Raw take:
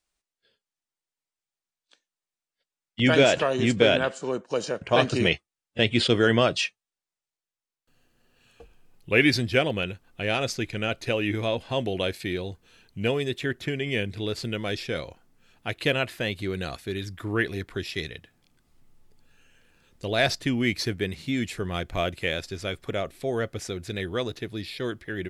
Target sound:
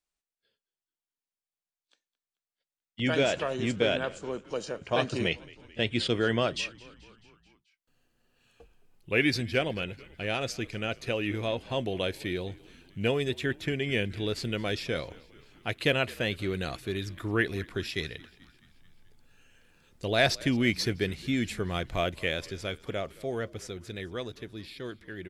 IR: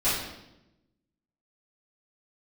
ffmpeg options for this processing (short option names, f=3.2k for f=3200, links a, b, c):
-filter_complex "[0:a]dynaudnorm=f=360:g=17:m=11.5dB,asplit=6[a][b][c][d][e][f];[b]adelay=217,afreqshift=-57,volume=-22dB[g];[c]adelay=434,afreqshift=-114,volume=-26dB[h];[d]adelay=651,afreqshift=-171,volume=-30dB[i];[e]adelay=868,afreqshift=-228,volume=-34dB[j];[f]adelay=1085,afreqshift=-285,volume=-38.1dB[k];[a][g][h][i][j][k]amix=inputs=6:normalize=0,volume=-8.5dB"